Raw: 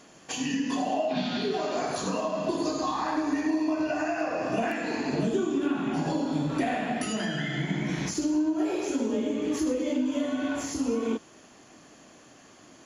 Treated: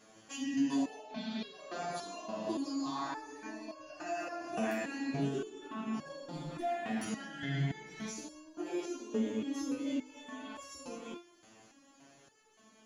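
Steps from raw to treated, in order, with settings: 4.05–5.03 s: treble shelf 5.5 kHz -> 9.2 kHz +10.5 dB; 6.26–7.07 s: hard clipper -23 dBFS, distortion -27 dB; resonator arpeggio 3.5 Hz 110–550 Hz; trim +3.5 dB

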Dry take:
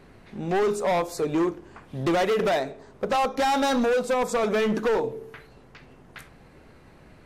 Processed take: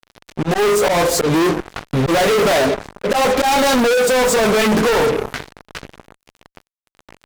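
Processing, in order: dynamic bell 520 Hz, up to +4 dB, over -37 dBFS, Q 3.1; chorus voices 6, 0.73 Hz, delay 16 ms, depth 4 ms; slow attack 137 ms; fuzz box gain 42 dB, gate -45 dBFS

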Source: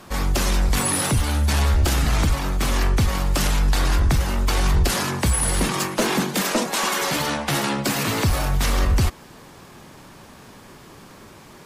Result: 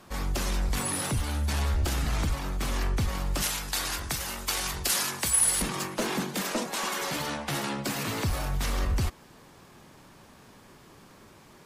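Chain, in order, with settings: 3.42–5.62 s: tilt EQ +3 dB/octave; trim -8.5 dB

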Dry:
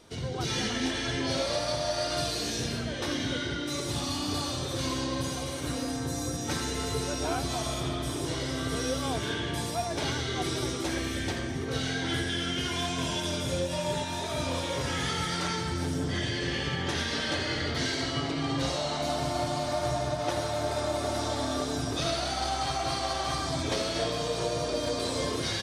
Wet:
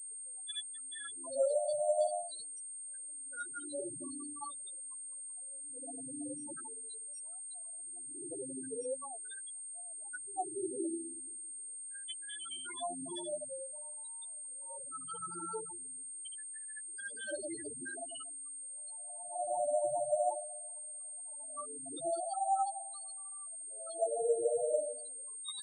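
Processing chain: loudest bins only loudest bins 4; LFO high-pass sine 0.44 Hz 400–3400 Hz; class-D stage that switches slowly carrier 8.6 kHz; trim -4 dB

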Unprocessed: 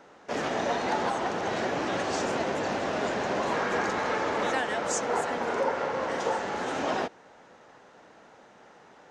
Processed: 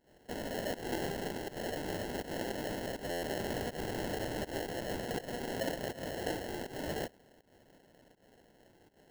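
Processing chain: sample-rate reducer 1.2 kHz, jitter 0%; volume shaper 81 bpm, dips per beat 1, -18 dB, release 170 ms; buffer glitch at 3.10 s, samples 512, times 10; trim -8.5 dB

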